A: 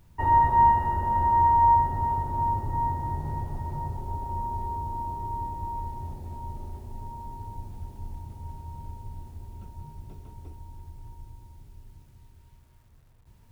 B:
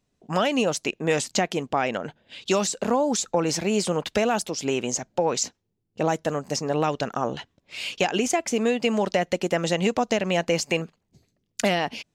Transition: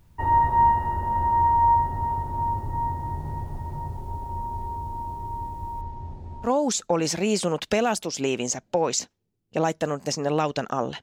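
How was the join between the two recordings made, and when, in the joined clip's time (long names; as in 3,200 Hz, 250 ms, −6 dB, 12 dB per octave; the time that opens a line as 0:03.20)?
A
0:05.81–0:06.50: high-frequency loss of the air 110 metres
0:06.46: continue with B from 0:02.90, crossfade 0.08 s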